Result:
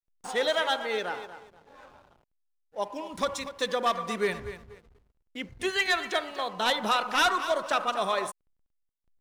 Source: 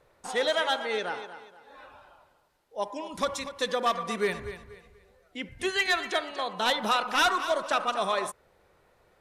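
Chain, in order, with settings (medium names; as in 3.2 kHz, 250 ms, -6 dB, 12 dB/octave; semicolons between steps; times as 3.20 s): hysteresis with a dead band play -47.5 dBFS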